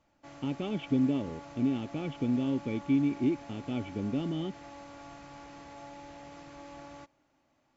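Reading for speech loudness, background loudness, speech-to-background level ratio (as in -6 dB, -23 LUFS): -32.0 LUFS, -48.0 LUFS, 16.0 dB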